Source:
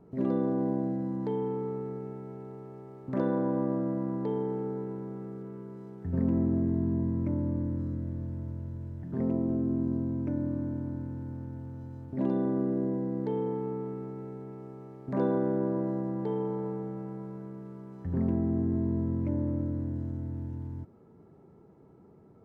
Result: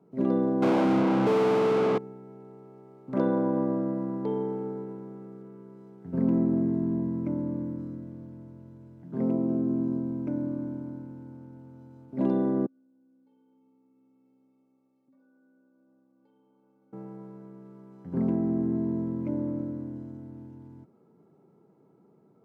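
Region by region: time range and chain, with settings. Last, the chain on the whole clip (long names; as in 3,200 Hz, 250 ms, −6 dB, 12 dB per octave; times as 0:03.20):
0:00.62–0:01.98: high-frequency loss of the air 410 metres + mid-hump overdrive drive 42 dB, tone 1,100 Hz, clips at −20 dBFS
0:12.66–0:16.93: stiff-string resonator 270 Hz, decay 0.35 s, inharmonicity 0.008 + downward compressor 16 to 1, threshold −57 dBFS
whole clip: high-pass filter 140 Hz 24 dB per octave; notch filter 1,800 Hz, Q 8; expander for the loud parts 1.5 to 1, over −42 dBFS; level +4.5 dB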